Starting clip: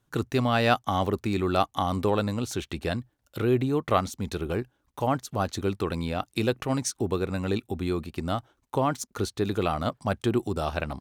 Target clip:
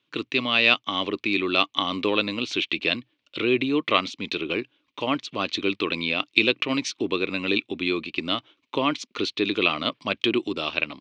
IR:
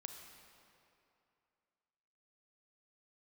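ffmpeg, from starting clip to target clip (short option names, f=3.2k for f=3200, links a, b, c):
-af "highpass=240,equalizer=f=300:t=q:w=4:g=7,equalizer=f=780:t=q:w=4:g=-9,equalizer=f=1.1k:t=q:w=4:g=4,equalizer=f=2.4k:t=q:w=4:g=4,lowpass=f=3.2k:w=0.5412,lowpass=f=3.2k:w=1.3066,dynaudnorm=f=870:g=3:m=3.5dB,aexciter=amount=9.5:drive=2.5:freq=2.3k,volume=-2.5dB"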